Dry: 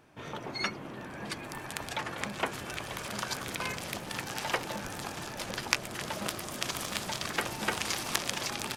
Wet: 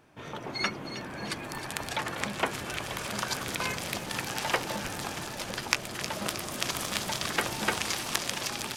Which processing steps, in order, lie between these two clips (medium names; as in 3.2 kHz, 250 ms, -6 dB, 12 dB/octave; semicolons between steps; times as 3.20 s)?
level rider gain up to 3 dB; on a send: feedback echo behind a high-pass 314 ms, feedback 60%, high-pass 2.8 kHz, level -8 dB